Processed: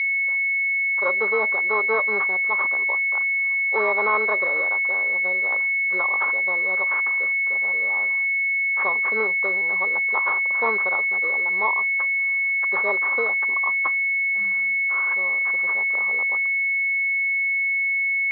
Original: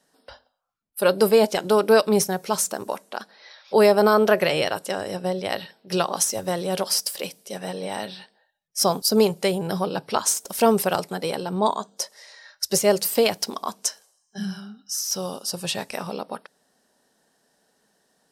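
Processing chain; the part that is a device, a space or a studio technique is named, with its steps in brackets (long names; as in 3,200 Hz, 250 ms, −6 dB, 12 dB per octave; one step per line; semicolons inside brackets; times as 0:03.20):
toy sound module (linearly interpolated sample-rate reduction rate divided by 6×; switching amplifier with a slow clock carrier 2,200 Hz; loudspeaker in its box 670–4,900 Hz, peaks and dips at 680 Hz −9 dB, 1,100 Hz +9 dB, 2,100 Hz +9 dB, 3,900 Hz +5 dB)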